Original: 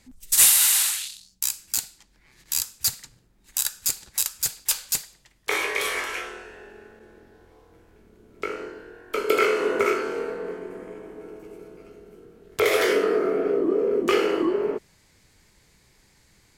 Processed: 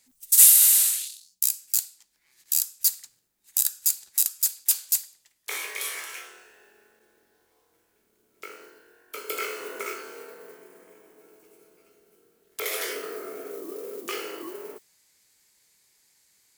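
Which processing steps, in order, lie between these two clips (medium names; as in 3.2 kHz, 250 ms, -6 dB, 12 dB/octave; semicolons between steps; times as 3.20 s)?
modulation noise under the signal 29 dB; RIAA curve recording; trim -11.5 dB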